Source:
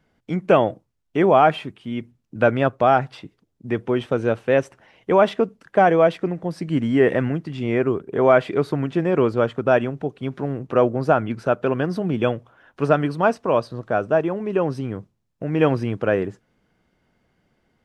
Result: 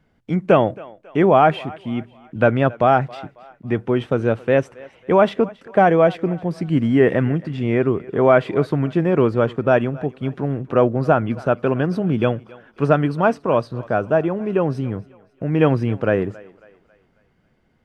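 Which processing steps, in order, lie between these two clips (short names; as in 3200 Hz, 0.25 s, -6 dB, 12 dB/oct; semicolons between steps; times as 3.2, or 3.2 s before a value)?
tone controls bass +4 dB, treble -4 dB; on a send: thinning echo 0.273 s, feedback 47%, high-pass 390 Hz, level -20.5 dB; on the sum: gain +1 dB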